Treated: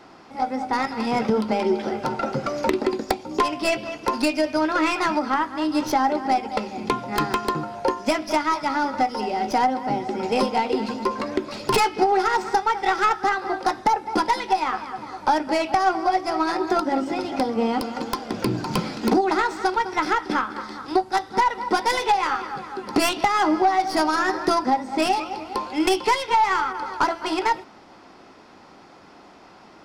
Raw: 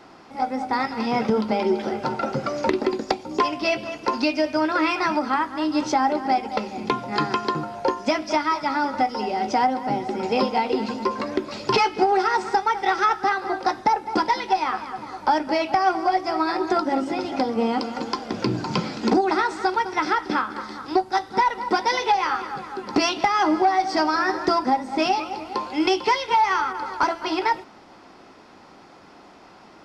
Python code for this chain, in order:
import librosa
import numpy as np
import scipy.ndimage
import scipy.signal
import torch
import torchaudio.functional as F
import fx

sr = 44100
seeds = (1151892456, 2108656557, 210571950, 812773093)

y = fx.tracing_dist(x, sr, depth_ms=0.094)